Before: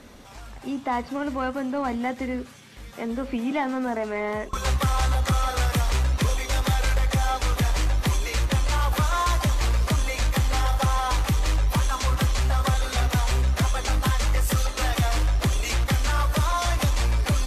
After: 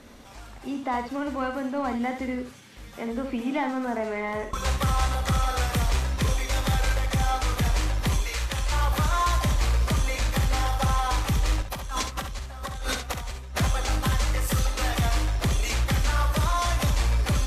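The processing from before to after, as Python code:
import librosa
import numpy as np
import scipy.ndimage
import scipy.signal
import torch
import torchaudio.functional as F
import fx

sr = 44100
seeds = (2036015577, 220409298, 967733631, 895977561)

y = fx.peak_eq(x, sr, hz=180.0, db=-10.5, octaves=2.8, at=(8.22, 8.72))
y = fx.over_compress(y, sr, threshold_db=-31.0, ratio=-1.0, at=(11.62, 13.59))
y = fx.room_early_taps(y, sr, ms=(42, 68), db=(-15.0, -8.0))
y = F.gain(torch.from_numpy(y), -2.0).numpy()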